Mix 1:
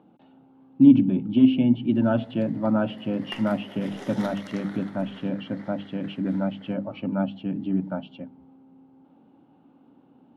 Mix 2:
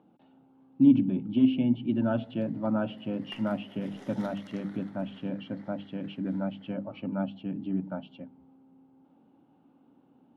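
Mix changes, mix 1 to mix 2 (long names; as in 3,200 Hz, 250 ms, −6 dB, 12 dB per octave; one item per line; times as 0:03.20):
speech −5.5 dB
background −10.0 dB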